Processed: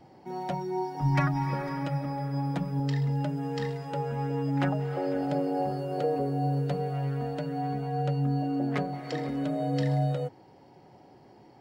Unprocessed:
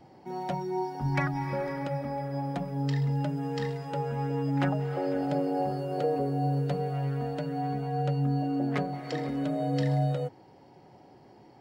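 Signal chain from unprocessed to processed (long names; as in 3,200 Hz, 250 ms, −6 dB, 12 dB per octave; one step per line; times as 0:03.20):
0:00.96–0:02.80: comb filter 6.4 ms, depth 71%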